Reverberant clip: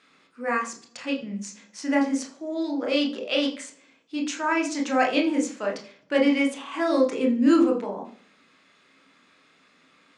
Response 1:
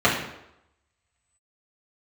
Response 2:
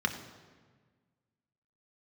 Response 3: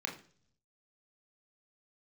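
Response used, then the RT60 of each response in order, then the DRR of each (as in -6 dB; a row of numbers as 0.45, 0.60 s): 3; 0.85, 1.5, 0.50 s; -7.5, 4.0, 1.0 dB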